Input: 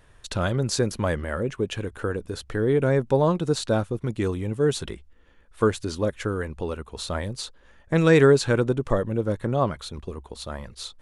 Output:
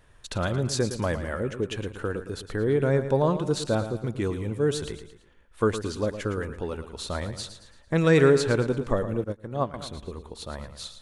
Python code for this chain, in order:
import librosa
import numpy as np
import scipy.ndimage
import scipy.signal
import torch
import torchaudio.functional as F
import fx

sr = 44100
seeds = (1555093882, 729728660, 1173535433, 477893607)

p1 = x + fx.echo_feedback(x, sr, ms=112, feedback_pct=43, wet_db=-11.0, dry=0)
p2 = fx.upward_expand(p1, sr, threshold_db=-31.0, expansion=2.5, at=(9.24, 9.74))
y = F.gain(torch.from_numpy(p2), -2.5).numpy()